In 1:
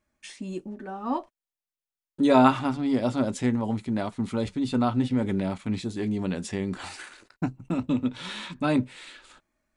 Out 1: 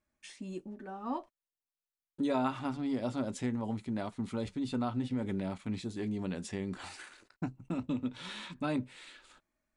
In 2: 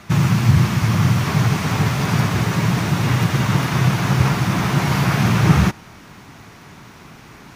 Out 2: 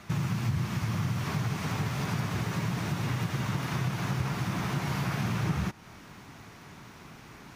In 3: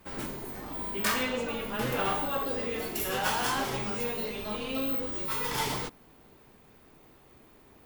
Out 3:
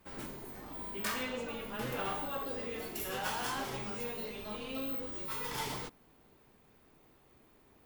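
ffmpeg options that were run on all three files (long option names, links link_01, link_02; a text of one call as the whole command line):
ffmpeg -i in.wav -af "acompressor=threshold=-23dB:ratio=2.5,volume=-7dB" out.wav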